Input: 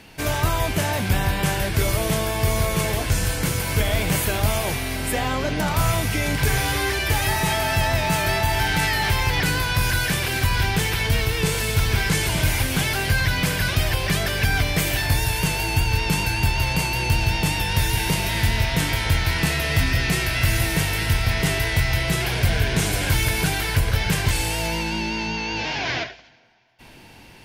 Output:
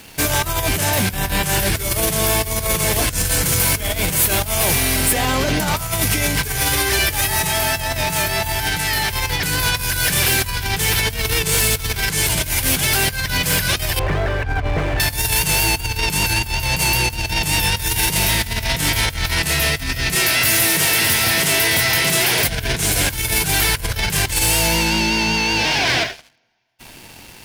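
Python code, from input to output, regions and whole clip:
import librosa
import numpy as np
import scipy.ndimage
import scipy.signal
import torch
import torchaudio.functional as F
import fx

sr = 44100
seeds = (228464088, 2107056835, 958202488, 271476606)

y = fx.chain(x, sr, fx.cvsd(bps=64000),
    fx.lowpass(hz=1200.0, slope=12),
    fx.peak_eq(hz=190.0, db=-12.5, octaves=0.63), at=(13.99, 15.0))
y = fx.chain(y, sr, fx.highpass(hz=200.0, slope=12),
    fx.echo_single(ms=613, db=-8.0), at=(20.15, 22.48))
y = fx.over_compress(y, sr, threshold_db=-24.0, ratio=-0.5)
y = fx.high_shelf(y, sr, hz=5100.0, db=11.0)
y = fx.leveller(y, sr, passes=3)
y = F.gain(torch.from_numpy(y), -6.0).numpy()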